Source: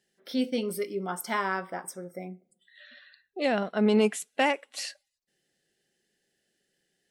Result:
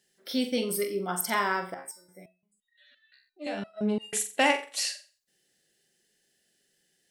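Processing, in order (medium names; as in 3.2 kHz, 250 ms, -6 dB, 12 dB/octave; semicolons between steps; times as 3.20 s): treble shelf 3.6 kHz +8 dB; flutter echo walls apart 7.6 m, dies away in 0.34 s; 1.74–4.13 s: resonator arpeggio 5.8 Hz 67–940 Hz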